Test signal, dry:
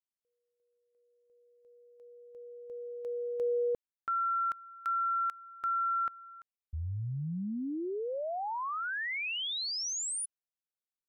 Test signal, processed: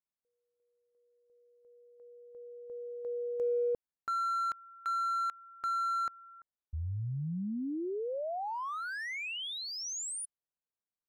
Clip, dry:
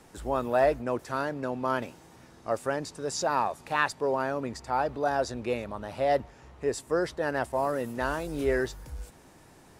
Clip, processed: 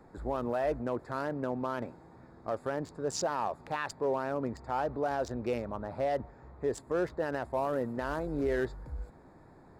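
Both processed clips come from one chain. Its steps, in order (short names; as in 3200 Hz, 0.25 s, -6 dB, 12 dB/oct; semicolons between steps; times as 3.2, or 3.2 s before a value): Wiener smoothing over 15 samples; limiter -22 dBFS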